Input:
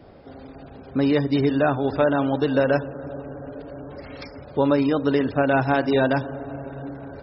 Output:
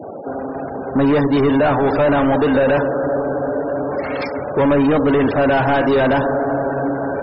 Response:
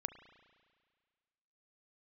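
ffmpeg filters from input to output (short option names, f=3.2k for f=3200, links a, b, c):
-filter_complex "[0:a]asplit=2[a][b];[b]highpass=f=720:p=1,volume=30dB,asoftclip=type=tanh:threshold=-7dB[c];[a][c]amix=inputs=2:normalize=0,lowpass=f=1.2k:p=1,volume=-6dB,afftfilt=real='re*gte(hypot(re,im),0.0398)':imag='im*gte(hypot(re,im),0.0398)':win_size=1024:overlap=0.75"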